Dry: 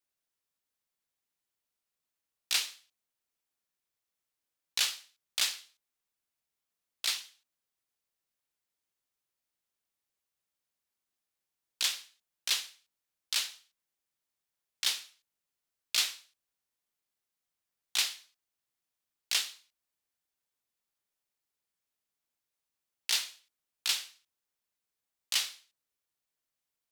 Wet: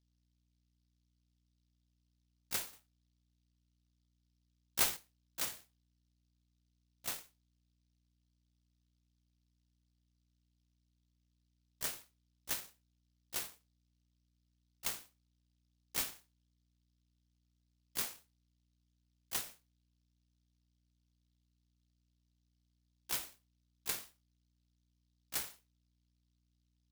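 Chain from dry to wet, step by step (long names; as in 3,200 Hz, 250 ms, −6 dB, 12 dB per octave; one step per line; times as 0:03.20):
low-pass that shuts in the quiet parts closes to 500 Hz, open at −29 dBFS
0:02.73–0:04.97: high-shelf EQ 2,800 Hz +9.5 dB
mains hum 60 Hz, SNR 30 dB
short delay modulated by noise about 4,300 Hz, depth 0.26 ms
level −7.5 dB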